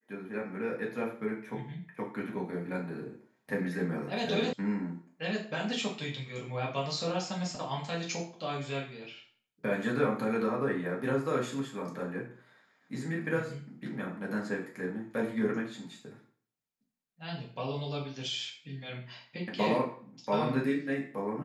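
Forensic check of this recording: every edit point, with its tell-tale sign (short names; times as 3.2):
4.53 sound cut off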